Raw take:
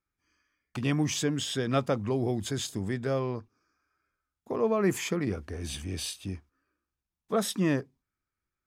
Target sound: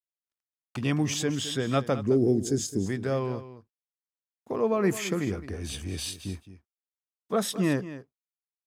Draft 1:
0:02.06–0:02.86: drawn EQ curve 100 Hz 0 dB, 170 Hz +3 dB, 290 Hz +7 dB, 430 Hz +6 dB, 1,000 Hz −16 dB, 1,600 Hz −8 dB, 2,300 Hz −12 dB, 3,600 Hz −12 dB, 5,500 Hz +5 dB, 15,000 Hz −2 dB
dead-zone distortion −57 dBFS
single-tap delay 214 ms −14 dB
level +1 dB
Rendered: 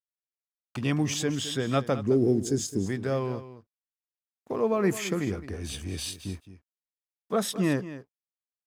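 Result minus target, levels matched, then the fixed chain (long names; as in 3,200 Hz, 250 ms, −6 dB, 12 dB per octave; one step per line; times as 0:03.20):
dead-zone distortion: distortion +8 dB
0:02.06–0:02.86: drawn EQ curve 100 Hz 0 dB, 170 Hz +3 dB, 290 Hz +7 dB, 430 Hz +6 dB, 1,000 Hz −16 dB, 1,600 Hz −8 dB, 2,300 Hz −12 dB, 3,600 Hz −12 dB, 5,500 Hz +5 dB, 15,000 Hz −2 dB
dead-zone distortion −65 dBFS
single-tap delay 214 ms −14 dB
level +1 dB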